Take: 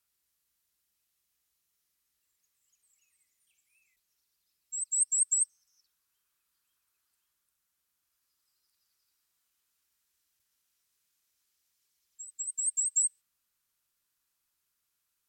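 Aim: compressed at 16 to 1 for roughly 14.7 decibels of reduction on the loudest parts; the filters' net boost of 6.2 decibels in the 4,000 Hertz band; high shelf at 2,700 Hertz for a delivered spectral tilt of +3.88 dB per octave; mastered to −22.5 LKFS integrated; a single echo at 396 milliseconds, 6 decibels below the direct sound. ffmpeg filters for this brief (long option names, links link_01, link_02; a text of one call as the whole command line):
ffmpeg -i in.wav -af "highshelf=frequency=2700:gain=4.5,equalizer=frequency=4000:width_type=o:gain=4,acompressor=threshold=-33dB:ratio=16,aecho=1:1:396:0.501,volume=13dB" out.wav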